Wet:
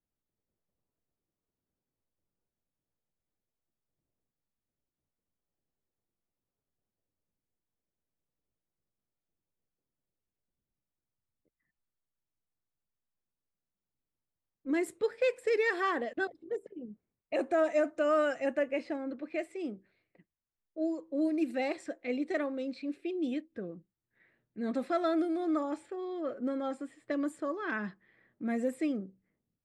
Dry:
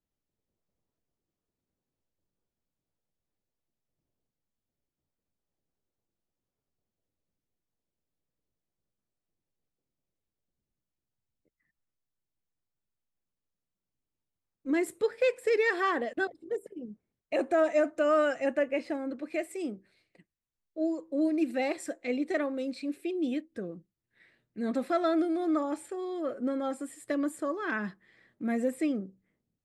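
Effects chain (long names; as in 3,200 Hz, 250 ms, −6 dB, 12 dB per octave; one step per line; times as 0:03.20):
low-pass that shuts in the quiet parts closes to 1,900 Hz, open at −24 dBFS
level −2.5 dB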